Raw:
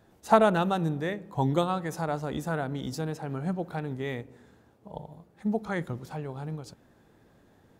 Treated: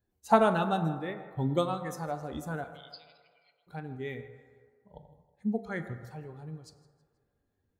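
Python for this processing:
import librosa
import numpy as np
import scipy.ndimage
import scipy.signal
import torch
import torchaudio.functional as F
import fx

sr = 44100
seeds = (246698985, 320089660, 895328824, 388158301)

p1 = fx.bin_expand(x, sr, power=1.5)
p2 = fx.fixed_phaser(p1, sr, hz=2800.0, stages=4, at=(0.98, 1.57))
p3 = fx.brickwall_bandpass(p2, sr, low_hz=1900.0, high_hz=5100.0, at=(2.64, 3.67))
p4 = p3 + fx.echo_feedback(p3, sr, ms=160, feedback_pct=41, wet_db=-20.5, dry=0)
p5 = fx.rev_fdn(p4, sr, rt60_s=1.9, lf_ratio=0.7, hf_ratio=0.4, size_ms=77.0, drr_db=7.5)
y = p5 * 10.0 ** (-1.0 / 20.0)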